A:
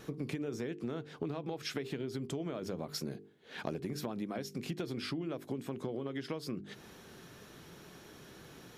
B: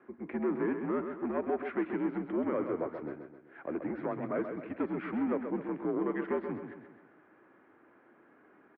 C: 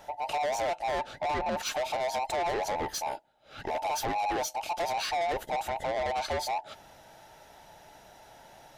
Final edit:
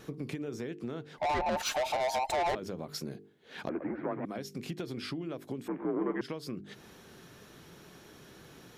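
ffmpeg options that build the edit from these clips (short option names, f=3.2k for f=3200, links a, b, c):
-filter_complex "[1:a]asplit=2[a][b];[0:a]asplit=4[c][d][e][f];[c]atrim=end=1.182[g];[2:a]atrim=start=1.178:end=2.552[h];[d]atrim=start=2.548:end=3.692[i];[a]atrim=start=3.688:end=4.252[j];[e]atrim=start=4.248:end=5.682[k];[b]atrim=start=5.678:end=6.212[l];[f]atrim=start=6.208[m];[g][h]acrossfade=d=0.004:c1=hsin:c2=hsin[n];[n][i]acrossfade=d=0.004:c1=hsin:c2=hsin[o];[o][j]acrossfade=d=0.004:c1=hsin:c2=hsin[p];[p][k]acrossfade=d=0.004:c1=hsin:c2=hsin[q];[q][l]acrossfade=d=0.004:c1=hsin:c2=hsin[r];[r][m]acrossfade=d=0.004:c1=hsin:c2=hsin"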